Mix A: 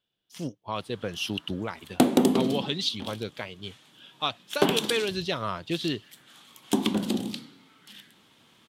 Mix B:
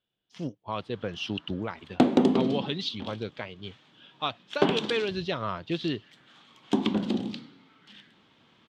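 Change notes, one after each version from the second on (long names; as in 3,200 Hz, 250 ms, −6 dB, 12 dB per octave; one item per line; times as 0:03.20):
master: add high-frequency loss of the air 160 metres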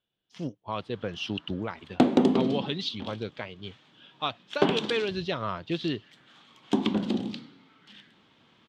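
nothing changed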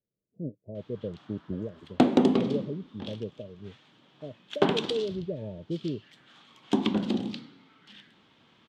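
speech: add Chebyshev low-pass with heavy ripple 630 Hz, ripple 3 dB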